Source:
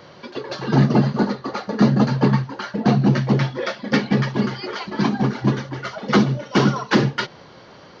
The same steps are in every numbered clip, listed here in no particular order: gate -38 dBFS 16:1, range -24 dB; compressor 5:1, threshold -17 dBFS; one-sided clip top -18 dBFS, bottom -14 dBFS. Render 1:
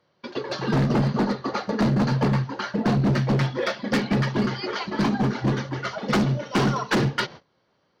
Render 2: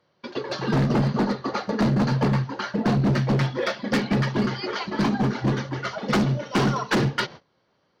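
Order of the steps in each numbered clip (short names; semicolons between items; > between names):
gate > one-sided clip > compressor; one-sided clip > gate > compressor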